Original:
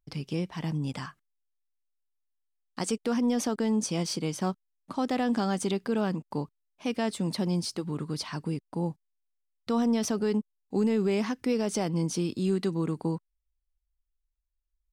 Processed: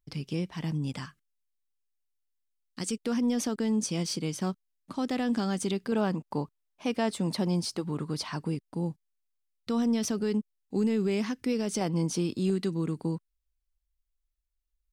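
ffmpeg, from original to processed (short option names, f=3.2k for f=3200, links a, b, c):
-af "asetnsamples=n=441:p=0,asendcmd='1.05 equalizer g -13;3.05 equalizer g -5.5;5.92 equalizer g 2;8.55 equalizer g -6;11.81 equalizer g 1;12.5 equalizer g -6',equalizer=f=810:t=o:w=1.6:g=-4"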